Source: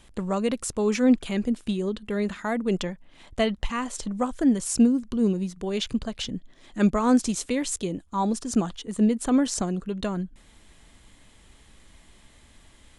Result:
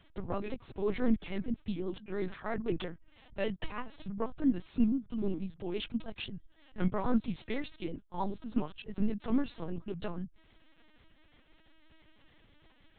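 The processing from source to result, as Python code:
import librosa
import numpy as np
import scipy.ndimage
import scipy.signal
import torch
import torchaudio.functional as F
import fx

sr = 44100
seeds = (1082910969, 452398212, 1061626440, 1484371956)

y = fx.pitch_trill(x, sr, semitones=-2.0, every_ms=82)
y = fx.lpc_vocoder(y, sr, seeds[0], excitation='pitch_kept', order=8)
y = F.gain(torch.from_numpy(y), -7.5).numpy()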